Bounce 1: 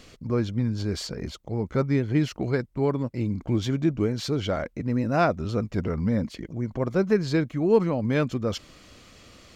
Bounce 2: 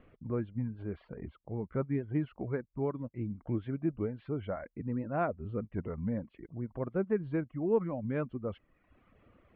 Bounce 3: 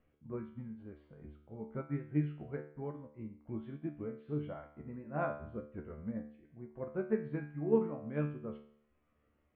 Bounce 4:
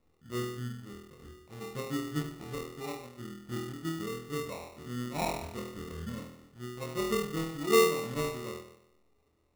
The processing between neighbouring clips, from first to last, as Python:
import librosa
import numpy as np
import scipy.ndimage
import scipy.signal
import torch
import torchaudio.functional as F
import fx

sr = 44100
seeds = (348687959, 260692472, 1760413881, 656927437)

y1 = scipy.signal.sosfilt(scipy.signal.bessel(8, 1500.0, 'lowpass', norm='mag', fs=sr, output='sos'), x)
y1 = fx.dereverb_blind(y1, sr, rt60_s=0.93)
y1 = y1 * librosa.db_to_amplitude(-8.0)
y2 = fx.comb_fb(y1, sr, f0_hz=74.0, decay_s=0.75, harmonics='all', damping=0.0, mix_pct=90)
y2 = fx.upward_expand(y2, sr, threshold_db=-59.0, expansion=1.5)
y2 = y2 * librosa.db_to_amplitude(11.0)
y3 = fx.room_flutter(y2, sr, wall_m=4.2, rt60_s=0.83)
y3 = fx.sample_hold(y3, sr, seeds[0], rate_hz=1600.0, jitter_pct=0)